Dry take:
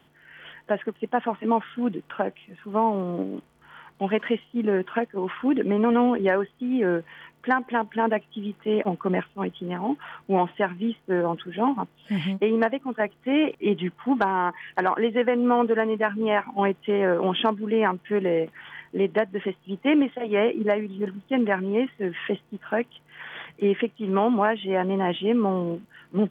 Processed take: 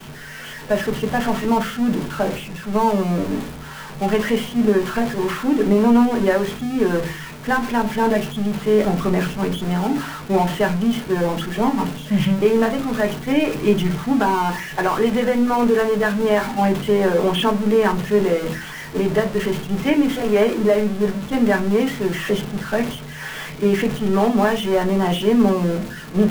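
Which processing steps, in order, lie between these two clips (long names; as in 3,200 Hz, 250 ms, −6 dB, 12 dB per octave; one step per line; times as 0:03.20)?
converter with a step at zero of −24 dBFS
downward expander −25 dBFS
low-shelf EQ 150 Hz +6 dB
on a send: convolution reverb RT60 0.25 s, pre-delay 5 ms, DRR 3 dB
on the sum: level −1 dB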